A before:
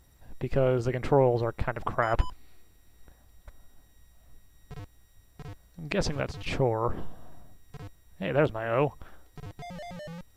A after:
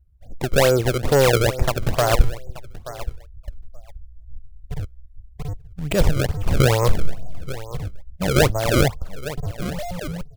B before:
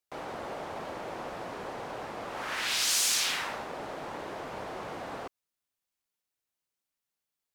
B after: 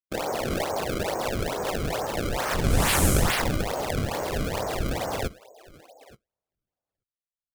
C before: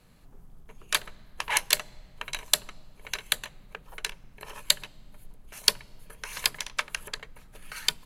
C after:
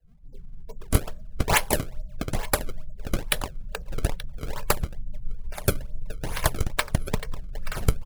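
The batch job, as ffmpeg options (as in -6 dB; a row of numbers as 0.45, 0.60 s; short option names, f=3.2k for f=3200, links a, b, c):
-filter_complex "[0:a]equalizer=f=540:w=1.1:g=7,asplit=2[a][b];[b]adelay=879,lowpass=f=4.5k:p=1,volume=-18dB,asplit=2[c][d];[d]adelay=879,lowpass=f=4.5k:p=1,volume=0.19[e];[c][e]amix=inputs=2:normalize=0[f];[a][f]amix=inputs=2:normalize=0,asoftclip=type=tanh:threshold=-16.5dB,afftdn=nr=31:nf=-46,acrossover=split=240|7900[g][h][i];[h]acrusher=samples=28:mix=1:aa=0.000001:lfo=1:lforange=44.8:lforate=2.3[j];[g][j][i]amix=inputs=3:normalize=0,asubboost=boost=3.5:cutoff=150,volume=6.5dB"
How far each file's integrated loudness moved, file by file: +8.0, +5.5, 0.0 LU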